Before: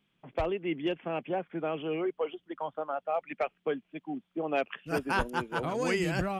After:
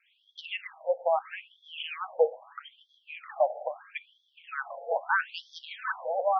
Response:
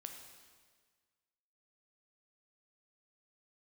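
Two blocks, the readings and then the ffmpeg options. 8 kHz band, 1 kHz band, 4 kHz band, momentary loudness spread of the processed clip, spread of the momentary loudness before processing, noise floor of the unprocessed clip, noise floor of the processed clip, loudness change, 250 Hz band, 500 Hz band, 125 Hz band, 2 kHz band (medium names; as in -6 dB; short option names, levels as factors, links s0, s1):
no reading, +3.0 dB, +2.0 dB, 17 LU, 8 LU, -77 dBFS, -71 dBFS, +1.5 dB, under -35 dB, +1.5 dB, under -40 dB, +2.0 dB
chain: -filter_complex "[0:a]alimiter=limit=0.0708:level=0:latency=1:release=117,asplit=2[s0][s1];[1:a]atrim=start_sample=2205[s2];[s1][s2]afir=irnorm=-1:irlink=0,volume=0.891[s3];[s0][s3]amix=inputs=2:normalize=0,afftfilt=real='re*between(b*sr/1024,620*pow(4600/620,0.5+0.5*sin(2*PI*0.77*pts/sr))/1.41,620*pow(4600/620,0.5+0.5*sin(2*PI*0.77*pts/sr))*1.41)':imag='im*between(b*sr/1024,620*pow(4600/620,0.5+0.5*sin(2*PI*0.77*pts/sr))/1.41,620*pow(4600/620,0.5+0.5*sin(2*PI*0.77*pts/sr))*1.41)':win_size=1024:overlap=0.75,volume=2.66"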